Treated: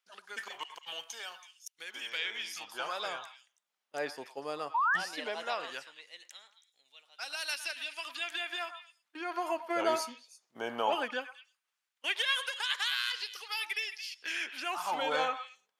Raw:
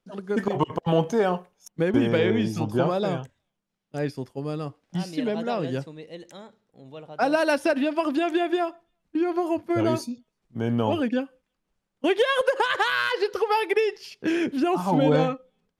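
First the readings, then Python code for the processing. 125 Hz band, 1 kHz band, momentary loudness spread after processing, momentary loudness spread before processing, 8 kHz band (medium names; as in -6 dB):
-34.0 dB, -7.5 dB, 15 LU, 12 LU, +0.5 dB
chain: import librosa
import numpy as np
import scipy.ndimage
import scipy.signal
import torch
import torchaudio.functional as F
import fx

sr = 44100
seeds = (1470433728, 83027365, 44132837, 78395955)

y = fx.spec_paint(x, sr, seeds[0], shape='rise', start_s=4.74, length_s=0.23, low_hz=870.0, high_hz=1900.0, level_db=-28.0)
y = fx.echo_stepped(y, sr, ms=109, hz=1100.0, octaves=1.4, feedback_pct=70, wet_db=-8.5)
y = fx.filter_lfo_highpass(y, sr, shape='sine', hz=0.17, low_hz=700.0, high_hz=3300.0, q=0.86)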